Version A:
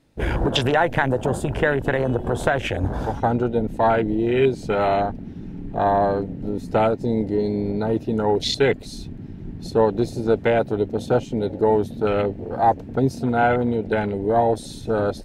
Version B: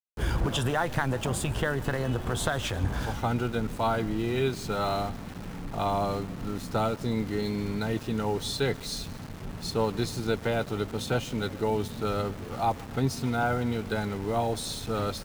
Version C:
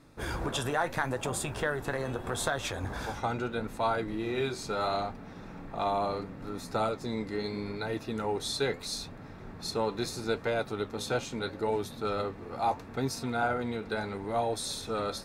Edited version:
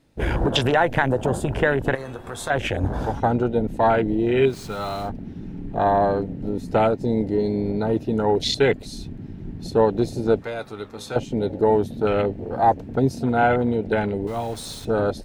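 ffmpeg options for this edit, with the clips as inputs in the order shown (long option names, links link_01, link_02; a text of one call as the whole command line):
ffmpeg -i take0.wav -i take1.wav -i take2.wav -filter_complex "[2:a]asplit=2[link_01][link_02];[1:a]asplit=2[link_03][link_04];[0:a]asplit=5[link_05][link_06][link_07][link_08][link_09];[link_05]atrim=end=1.952[link_10];[link_01]atrim=start=1.948:end=2.502[link_11];[link_06]atrim=start=2.498:end=4.55[link_12];[link_03]atrim=start=4.45:end=5.12[link_13];[link_07]atrim=start=5.02:end=10.422[link_14];[link_02]atrim=start=10.418:end=11.162[link_15];[link_08]atrim=start=11.158:end=14.272[link_16];[link_04]atrim=start=14.268:end=14.852[link_17];[link_09]atrim=start=14.848[link_18];[link_10][link_11]acrossfade=duration=0.004:curve1=hsin:curve2=hsin[link_19];[link_19][link_12]acrossfade=duration=0.004:curve1=hsin:curve2=hsin[link_20];[link_20][link_13]acrossfade=duration=0.1:curve1=tri:curve2=tri[link_21];[link_21][link_14]acrossfade=duration=0.1:curve1=tri:curve2=tri[link_22];[link_22][link_15]acrossfade=duration=0.004:curve1=hsin:curve2=hsin[link_23];[link_23][link_16]acrossfade=duration=0.004:curve1=hsin:curve2=hsin[link_24];[link_24][link_17]acrossfade=duration=0.004:curve1=hsin:curve2=hsin[link_25];[link_25][link_18]acrossfade=duration=0.004:curve1=hsin:curve2=hsin" out.wav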